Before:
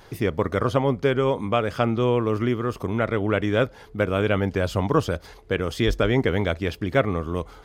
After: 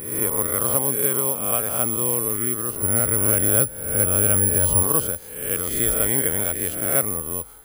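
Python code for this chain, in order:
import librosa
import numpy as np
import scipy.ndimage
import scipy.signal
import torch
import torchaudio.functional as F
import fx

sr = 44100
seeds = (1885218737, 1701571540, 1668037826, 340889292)

y = fx.spec_swells(x, sr, rise_s=0.85)
y = fx.peak_eq(y, sr, hz=67.0, db=10.0, octaves=2.9, at=(2.82, 4.83))
y = (np.kron(scipy.signal.resample_poly(y, 1, 4), np.eye(4)[0]) * 4)[:len(y)]
y = y * 10.0 ** (-8.0 / 20.0)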